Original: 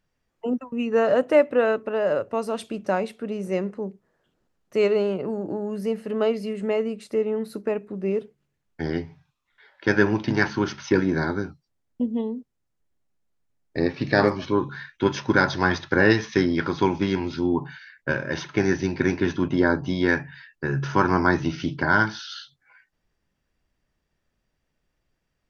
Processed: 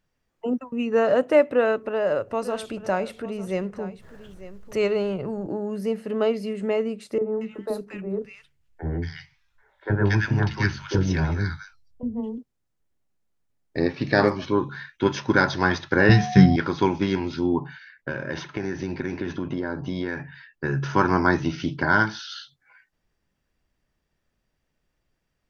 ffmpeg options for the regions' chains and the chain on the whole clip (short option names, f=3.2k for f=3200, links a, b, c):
-filter_complex "[0:a]asettb=1/sr,asplit=3[a][b][c];[a]atrim=end=1.514[d];[b]atrim=start=1.51:end=5.47,asetpts=PTS-STARTPTS,afade=t=in:d=0.004:c=qsin,afade=t=out:st=3.956:d=0.004:c=qsin,asubboost=boost=8.5:cutoff=100,acompressor=mode=upward:threshold=-30dB:ratio=2.5:attack=3.2:release=140:knee=2.83:detection=peak,aecho=1:1:897:0.168,atrim=end_sample=174636[e];[c]atrim=start=5.466[f];[d][e]acrossfade=d=0.004:c1=hsin:c2=qsin[g];[g][f]acrossfade=d=0.004:c1=qsin:c2=hsin,asettb=1/sr,asplit=3[h][i][j];[h]atrim=end=7.184[k];[i]atrim=start=7.18:end=12.38,asetpts=PTS-STARTPTS,afade=t=in:d=0.004:c=qsin,afade=t=out:st=5.196:d=0.004:c=qsin,asubboost=boost=10:cutoff=91,acrossover=split=420|1400[l][m][n];[l]adelay=30[o];[n]adelay=230[p];[o][m][p]amix=inputs=3:normalize=0,atrim=end_sample=229320[q];[j]atrim=start=12.376[r];[k][q]acrossfade=d=0.004:c1=hsin:c2=qsin[s];[s][r]acrossfade=d=0.004:c1=qsin:c2=hsin,asettb=1/sr,asplit=3[t][u][v];[t]atrim=end=16.094[w];[u]atrim=start=16.09:end=16.56,asetpts=PTS-STARTPTS,afade=t=in:d=0.004:c=qsin,afade=t=out:st=0.466:d=0.004:c=qsin,lowshelf=f=230:t=q:w=3:g=9.5,aeval=exprs='val(0)+0.0282*sin(2*PI*730*n/s)':c=same,asplit=2[x][y];[y]adelay=15,volume=-6dB[z];[x][z]amix=inputs=2:normalize=0,atrim=end_sample=20727[aa];[v]atrim=start=16.556[ab];[w][aa]acrossfade=d=0.004:c1=hsin:c2=qsin[ac];[ac][ab]acrossfade=d=0.004:c1=qsin:c2=hsin,asettb=1/sr,asplit=3[ad][ae][af];[ad]atrim=end=17.594[ag];[ae]atrim=start=17.59:end=20.64,asetpts=PTS-STARTPTS,afade=t=in:d=0.004:c=qsin,afade=t=out:st=3.046:d=0.004:c=qsin,highshelf=f=4.1k:g=-6,acompressor=threshold=-23dB:ratio=10:attack=3.2:release=140:knee=1:detection=peak[ah];[af]atrim=start=20.636[ai];[ag][ah]acrossfade=d=0.004:c1=hsin:c2=qsin[aj];[aj][ai]acrossfade=d=0.004:c1=qsin:c2=hsin"